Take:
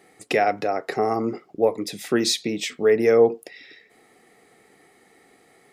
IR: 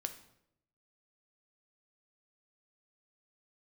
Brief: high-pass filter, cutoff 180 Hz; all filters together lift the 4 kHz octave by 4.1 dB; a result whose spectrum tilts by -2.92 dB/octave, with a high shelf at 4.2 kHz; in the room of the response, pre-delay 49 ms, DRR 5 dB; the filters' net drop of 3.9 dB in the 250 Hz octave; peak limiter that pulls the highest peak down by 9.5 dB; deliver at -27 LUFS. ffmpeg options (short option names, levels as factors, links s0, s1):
-filter_complex "[0:a]highpass=180,equalizer=f=250:t=o:g=-4.5,equalizer=f=4000:t=o:g=8.5,highshelf=f=4200:g=-6.5,alimiter=limit=0.15:level=0:latency=1,asplit=2[s0][s1];[1:a]atrim=start_sample=2205,adelay=49[s2];[s1][s2]afir=irnorm=-1:irlink=0,volume=0.631[s3];[s0][s3]amix=inputs=2:normalize=0,volume=0.891"